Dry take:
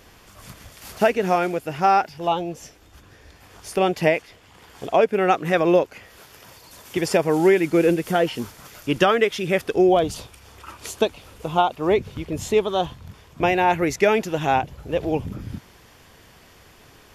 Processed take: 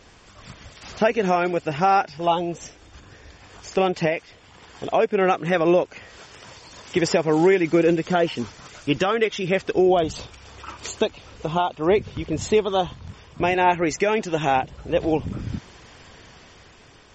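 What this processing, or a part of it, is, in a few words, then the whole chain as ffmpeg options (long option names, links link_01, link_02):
low-bitrate web radio: -filter_complex "[0:a]asettb=1/sr,asplit=3[link_01][link_02][link_03];[link_01]atrim=end=13.544[link_04];[link_02]atrim=start=13.54:end=15.26,asetpts=PTS-STARTPTS,afade=type=in:duration=0.004:curve=qsin,afade=type=out:start_time=1.716:duration=0.004:curve=qsin,adynamicequalizer=threshold=0.00631:dfrequency=100:dqfactor=1.4:tfrequency=100:tqfactor=1.4:attack=5:release=100:ratio=0.375:range=2.5:mode=cutabove:tftype=bell[link_05];[link_03]atrim=start=15.256[link_06];[link_04][link_05]acrossfade=duration=0.004:curve1=hsin:curve2=qsin[link_07];[link_07][link_06]acrossfade=duration=0.004:curve1=qsin:curve2=hsin,dynaudnorm=framelen=260:gausssize=7:maxgain=5dB,alimiter=limit=-8.5dB:level=0:latency=1:release=328" -ar 44100 -c:a libmp3lame -b:a 32k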